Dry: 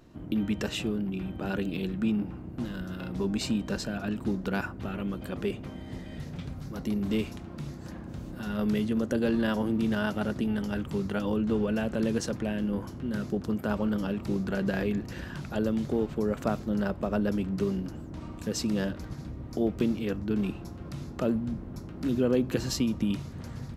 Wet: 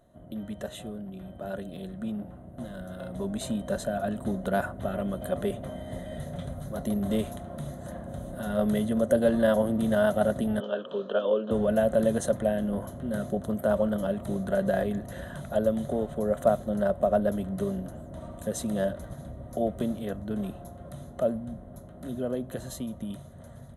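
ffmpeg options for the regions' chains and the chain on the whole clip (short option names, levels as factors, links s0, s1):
-filter_complex "[0:a]asettb=1/sr,asplit=3[s0][s1][s2];[s0]atrim=end=10.604[s3];[s1]atrim=start=10.6:end=11.51,asetpts=PTS-STARTPTS,afade=t=in:d=0.004:c=qsin,afade=t=out:st=0.906:d=0.004:c=qsin,asuperstop=centerf=2100:order=12:qfactor=3.9,highpass=f=270:w=0.5412,highpass=f=270:w=1.3066,equalizer=f=300:t=q:w=4:g=-5,equalizer=f=470:t=q:w=4:g=8,equalizer=f=750:t=q:w=4:g=-8,equalizer=f=1200:t=q:w=4:g=3,equalizer=f=1800:t=q:w=4:g=-5,equalizer=f=3100:t=q:w=4:g=7,lowpass=f=3800:w=0.5412,lowpass=f=3800:w=1.3066[s4];[s2]atrim=start=11.506[s5];[s3][s4]acrossfade=d=0.004:c1=hsin:c2=qsin[s6];[s6][s5]acrossfade=d=0.004:c1=qsin:c2=hsin,superequalizer=6b=0.562:8b=3.98:12b=0.316:14b=0.251:16b=3.55,dynaudnorm=f=860:g=9:m=3.76,volume=0.398"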